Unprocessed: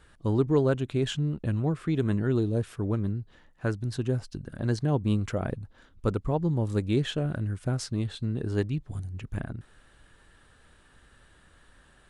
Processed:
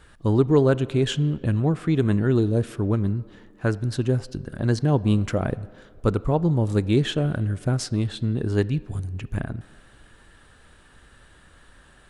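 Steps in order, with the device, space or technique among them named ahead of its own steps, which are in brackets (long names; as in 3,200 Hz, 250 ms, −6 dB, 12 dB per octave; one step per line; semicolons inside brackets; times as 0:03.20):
filtered reverb send (on a send: high-pass filter 240 Hz 12 dB per octave + low-pass filter 4,600 Hz + convolution reverb RT60 2.0 s, pre-delay 23 ms, DRR 18 dB)
on the sum: level +5.5 dB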